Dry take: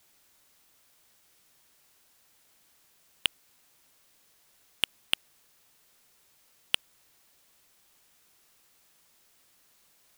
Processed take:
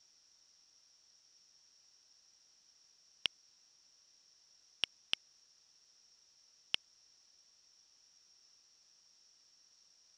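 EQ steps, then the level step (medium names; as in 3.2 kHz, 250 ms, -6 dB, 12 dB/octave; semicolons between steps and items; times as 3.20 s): four-pole ladder low-pass 5.7 kHz, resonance 90%; band-stop 2.2 kHz, Q 19; +3.0 dB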